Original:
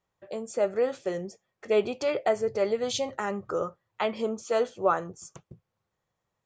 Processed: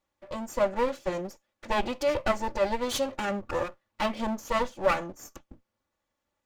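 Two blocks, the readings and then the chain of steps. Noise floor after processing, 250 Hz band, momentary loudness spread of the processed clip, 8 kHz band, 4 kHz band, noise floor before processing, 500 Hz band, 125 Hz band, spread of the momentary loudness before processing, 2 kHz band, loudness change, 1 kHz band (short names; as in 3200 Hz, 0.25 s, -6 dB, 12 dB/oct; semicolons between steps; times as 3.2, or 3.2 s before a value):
-83 dBFS, +1.5 dB, 12 LU, 0.0 dB, +1.5 dB, -83 dBFS, -2.5 dB, +1.5 dB, 12 LU, +3.5 dB, -0.5 dB, +2.5 dB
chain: minimum comb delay 3.5 ms; gain +1.5 dB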